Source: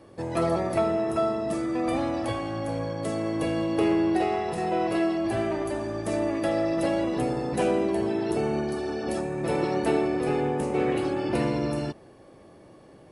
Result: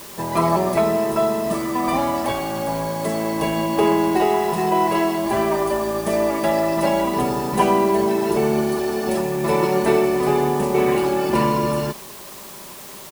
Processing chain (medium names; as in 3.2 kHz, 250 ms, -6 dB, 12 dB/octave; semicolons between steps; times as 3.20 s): comb 5 ms, depth 72%; in parallel at -3 dB: word length cut 6-bit, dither triangular; on the sum: peaking EQ 1 kHz +11 dB 0.32 oct